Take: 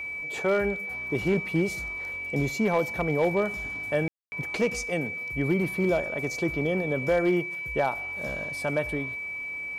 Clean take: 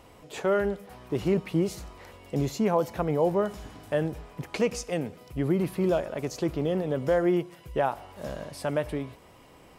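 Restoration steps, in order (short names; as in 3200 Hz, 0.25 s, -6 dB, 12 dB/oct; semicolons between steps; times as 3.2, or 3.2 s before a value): clip repair -16.5 dBFS; notch 2300 Hz, Q 30; room tone fill 4.08–4.32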